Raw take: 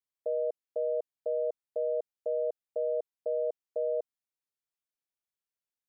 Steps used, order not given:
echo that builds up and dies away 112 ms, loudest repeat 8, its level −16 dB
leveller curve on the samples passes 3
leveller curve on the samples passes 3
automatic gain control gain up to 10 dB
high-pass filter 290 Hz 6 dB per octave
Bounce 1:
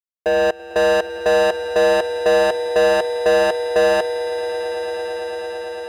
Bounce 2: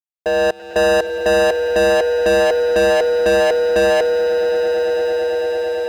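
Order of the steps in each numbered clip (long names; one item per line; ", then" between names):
automatic gain control, then first leveller curve on the samples, then high-pass filter, then second leveller curve on the samples, then echo that builds up and dies away
high-pass filter, then first leveller curve on the samples, then automatic gain control, then echo that builds up and dies away, then second leveller curve on the samples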